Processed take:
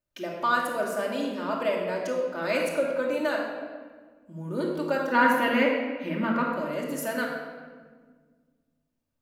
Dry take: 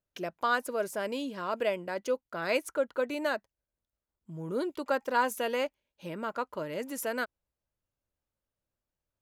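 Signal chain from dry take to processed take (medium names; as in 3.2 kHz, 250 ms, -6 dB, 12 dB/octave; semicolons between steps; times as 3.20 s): 5.12–6.49 s: graphic EQ 250/2000/8000 Hz +10/+10/-9 dB; simulated room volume 1700 m³, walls mixed, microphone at 2.6 m; trim -1 dB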